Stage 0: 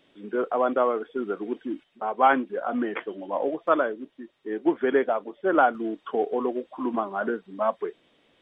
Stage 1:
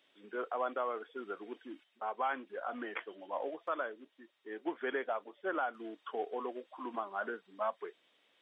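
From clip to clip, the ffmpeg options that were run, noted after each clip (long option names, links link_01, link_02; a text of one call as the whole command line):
ffmpeg -i in.wav -af "highpass=frequency=1100:poles=1,alimiter=limit=-20dB:level=0:latency=1:release=160,volume=-4.5dB" out.wav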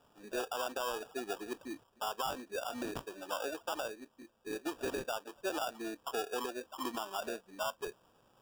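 ffmpeg -i in.wav -af "acrusher=samples=21:mix=1:aa=0.000001,alimiter=level_in=8.5dB:limit=-24dB:level=0:latency=1:release=183,volume=-8.5dB,volume=4dB" out.wav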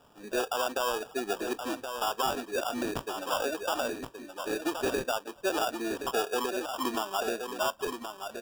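ffmpeg -i in.wav -af "aecho=1:1:1073:0.422,volume=7dB" out.wav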